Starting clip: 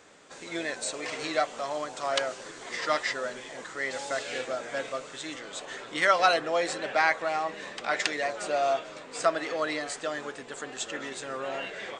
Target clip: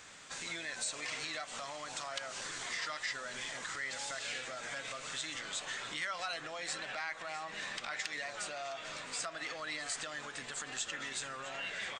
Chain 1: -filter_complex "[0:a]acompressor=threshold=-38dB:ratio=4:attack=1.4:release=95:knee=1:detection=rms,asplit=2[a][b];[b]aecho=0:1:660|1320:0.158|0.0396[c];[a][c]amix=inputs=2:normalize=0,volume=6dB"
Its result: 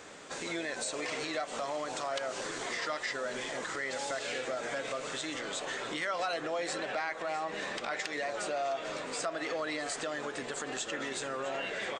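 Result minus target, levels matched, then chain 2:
500 Hz band +8.0 dB
-filter_complex "[0:a]acompressor=threshold=-38dB:ratio=4:attack=1.4:release=95:knee=1:detection=rms,equalizer=f=410:w=0.59:g=-14.5,asplit=2[a][b];[b]aecho=0:1:660|1320:0.158|0.0396[c];[a][c]amix=inputs=2:normalize=0,volume=6dB"

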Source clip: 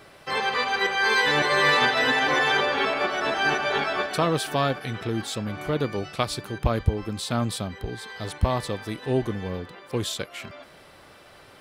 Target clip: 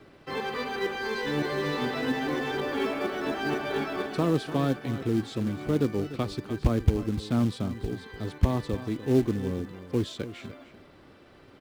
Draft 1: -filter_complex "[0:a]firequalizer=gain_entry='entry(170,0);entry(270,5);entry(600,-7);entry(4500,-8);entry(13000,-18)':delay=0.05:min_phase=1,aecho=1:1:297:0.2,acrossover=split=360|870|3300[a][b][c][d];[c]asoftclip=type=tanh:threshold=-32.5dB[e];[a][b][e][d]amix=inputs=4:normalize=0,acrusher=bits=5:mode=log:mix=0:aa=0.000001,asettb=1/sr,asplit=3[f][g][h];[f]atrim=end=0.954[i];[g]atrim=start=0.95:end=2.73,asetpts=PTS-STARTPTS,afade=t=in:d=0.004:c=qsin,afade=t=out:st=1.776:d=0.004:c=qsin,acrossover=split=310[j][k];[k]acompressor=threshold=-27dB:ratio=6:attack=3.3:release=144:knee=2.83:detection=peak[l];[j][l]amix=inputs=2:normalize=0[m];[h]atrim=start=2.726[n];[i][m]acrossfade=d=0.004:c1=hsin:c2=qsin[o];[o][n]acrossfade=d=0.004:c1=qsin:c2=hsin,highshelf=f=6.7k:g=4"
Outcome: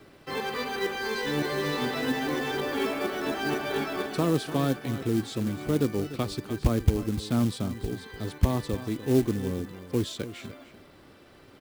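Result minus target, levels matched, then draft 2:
8000 Hz band +6.0 dB
-filter_complex "[0:a]firequalizer=gain_entry='entry(170,0);entry(270,5);entry(600,-7);entry(4500,-8);entry(13000,-18)':delay=0.05:min_phase=1,aecho=1:1:297:0.2,acrossover=split=360|870|3300[a][b][c][d];[c]asoftclip=type=tanh:threshold=-32.5dB[e];[a][b][e][d]amix=inputs=4:normalize=0,acrusher=bits=5:mode=log:mix=0:aa=0.000001,asettb=1/sr,asplit=3[f][g][h];[f]atrim=end=0.954[i];[g]atrim=start=0.95:end=2.73,asetpts=PTS-STARTPTS,afade=t=in:d=0.004:c=qsin,afade=t=out:st=1.776:d=0.004:c=qsin,acrossover=split=310[j][k];[k]acompressor=threshold=-27dB:ratio=6:attack=3.3:release=144:knee=2.83:detection=peak[l];[j][l]amix=inputs=2:normalize=0[m];[h]atrim=start=2.726[n];[i][m]acrossfade=d=0.004:c1=hsin:c2=qsin[o];[o][n]acrossfade=d=0.004:c1=qsin:c2=hsin,highshelf=f=6.7k:g=-7.5"

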